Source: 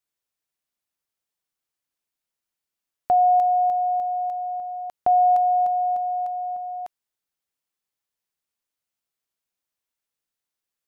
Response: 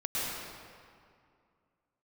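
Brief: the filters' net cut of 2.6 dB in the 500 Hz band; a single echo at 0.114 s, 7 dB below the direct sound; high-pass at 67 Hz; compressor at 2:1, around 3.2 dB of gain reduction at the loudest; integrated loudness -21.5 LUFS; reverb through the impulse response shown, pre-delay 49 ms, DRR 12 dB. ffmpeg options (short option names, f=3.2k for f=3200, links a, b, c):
-filter_complex "[0:a]highpass=67,equalizer=f=500:t=o:g=-5.5,acompressor=threshold=-23dB:ratio=2,aecho=1:1:114:0.447,asplit=2[a][b];[1:a]atrim=start_sample=2205,adelay=49[c];[b][c]afir=irnorm=-1:irlink=0,volume=-19.5dB[d];[a][d]amix=inputs=2:normalize=0,volume=10dB"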